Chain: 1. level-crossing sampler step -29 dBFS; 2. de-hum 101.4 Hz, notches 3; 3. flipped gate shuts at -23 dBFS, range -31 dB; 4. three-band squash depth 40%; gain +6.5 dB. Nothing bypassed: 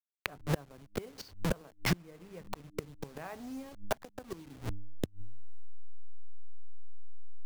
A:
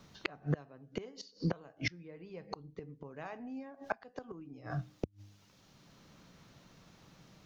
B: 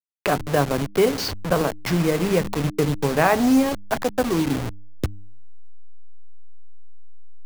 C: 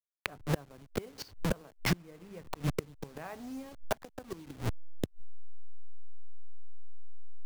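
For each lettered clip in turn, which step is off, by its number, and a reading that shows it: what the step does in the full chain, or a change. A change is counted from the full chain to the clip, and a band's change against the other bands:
1, distortion -6 dB; 3, momentary loudness spread change -3 LU; 2, loudness change +1.0 LU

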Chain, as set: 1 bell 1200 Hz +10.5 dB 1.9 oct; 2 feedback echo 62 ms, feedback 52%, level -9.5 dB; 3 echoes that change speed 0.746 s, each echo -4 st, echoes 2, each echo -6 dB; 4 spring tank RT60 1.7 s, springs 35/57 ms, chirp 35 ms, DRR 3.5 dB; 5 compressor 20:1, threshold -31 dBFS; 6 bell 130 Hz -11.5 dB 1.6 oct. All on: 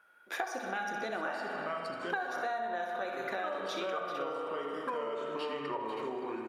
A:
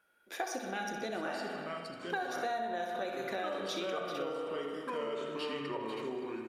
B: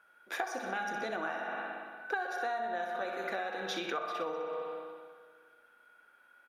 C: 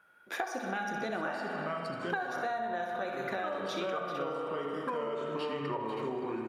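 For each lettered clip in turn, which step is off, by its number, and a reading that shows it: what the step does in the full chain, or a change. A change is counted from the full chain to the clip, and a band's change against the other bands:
1, 2 kHz band -5.0 dB; 3, 125 Hz band -3.0 dB; 6, 125 Hz band +9.5 dB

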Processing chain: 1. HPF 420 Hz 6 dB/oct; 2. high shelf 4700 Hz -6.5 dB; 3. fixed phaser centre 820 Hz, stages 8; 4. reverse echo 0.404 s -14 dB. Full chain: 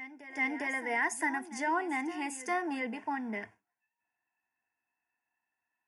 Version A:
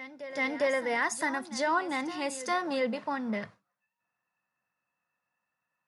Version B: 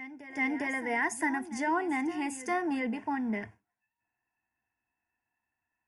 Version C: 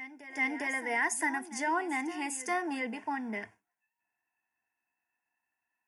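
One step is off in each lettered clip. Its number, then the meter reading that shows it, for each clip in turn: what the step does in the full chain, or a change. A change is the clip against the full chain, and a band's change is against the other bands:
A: 3, 4 kHz band +7.0 dB; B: 1, 250 Hz band +5.0 dB; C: 2, 8 kHz band +5.0 dB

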